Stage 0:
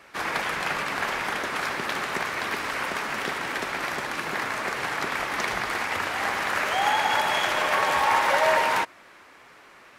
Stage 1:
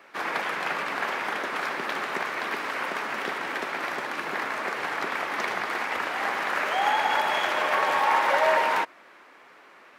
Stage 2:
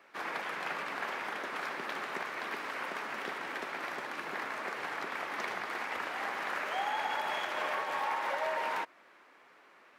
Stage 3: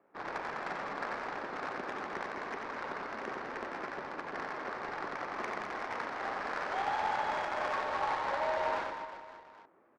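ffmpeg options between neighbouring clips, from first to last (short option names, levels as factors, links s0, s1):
-af "highpass=230,equalizer=f=9100:w=0.43:g=-8"
-af "alimiter=limit=0.168:level=0:latency=1:release=211,volume=0.398"
-af "adynamicsmooth=sensitivity=3:basefreq=670,aecho=1:1:90|207|359.1|556.8|813.9:0.631|0.398|0.251|0.158|0.1"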